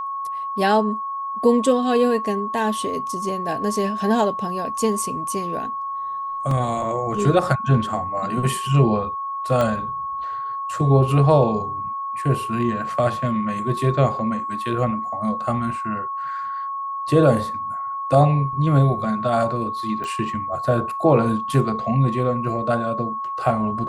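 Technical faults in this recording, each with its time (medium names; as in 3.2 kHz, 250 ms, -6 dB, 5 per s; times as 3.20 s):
whine 1.1 kHz -25 dBFS
6.51 s: dropout 3.2 ms
9.61 s: pop -10 dBFS
20.04 s: pop -18 dBFS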